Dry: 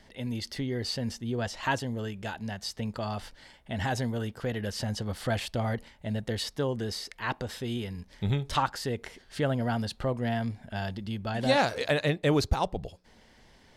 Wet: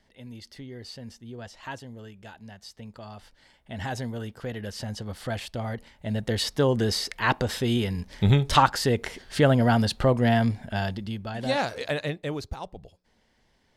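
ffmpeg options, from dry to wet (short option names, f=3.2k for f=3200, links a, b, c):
-af "volume=8.5dB,afade=t=in:st=3.23:d=0.65:silence=0.446684,afade=t=in:st=5.77:d=1.04:silence=0.298538,afade=t=out:st=10.45:d=0.85:silence=0.298538,afade=t=out:st=11.98:d=0.41:silence=0.446684"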